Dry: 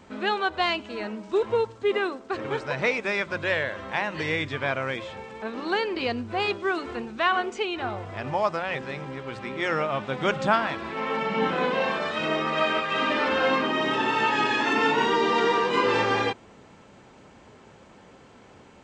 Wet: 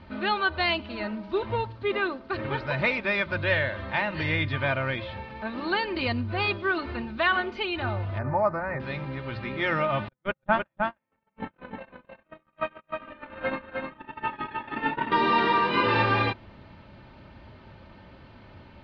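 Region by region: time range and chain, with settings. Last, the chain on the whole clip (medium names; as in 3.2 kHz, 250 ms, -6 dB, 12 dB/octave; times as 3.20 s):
8.18–8.80 s: Butterworth band-stop 3.2 kHz, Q 0.88 + peaking EQ 5.4 kHz -10 dB 0.83 oct
10.08–15.12 s: gate -22 dBFS, range -54 dB + distance through air 340 m + delay 309 ms -4 dB
whole clip: elliptic low-pass 4.5 kHz, stop band 60 dB; resonant low shelf 200 Hz +9.5 dB, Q 1.5; comb 3.3 ms, depth 53%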